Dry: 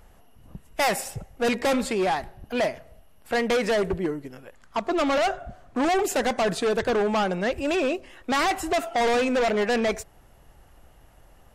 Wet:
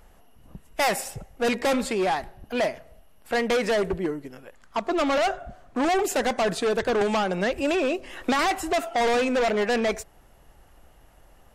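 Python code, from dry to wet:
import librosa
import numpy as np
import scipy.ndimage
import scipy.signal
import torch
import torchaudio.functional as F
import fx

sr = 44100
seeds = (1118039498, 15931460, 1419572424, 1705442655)

y = fx.peak_eq(x, sr, hz=100.0, db=-4.0, octaves=1.3)
y = fx.band_squash(y, sr, depth_pct=100, at=(7.01, 8.39))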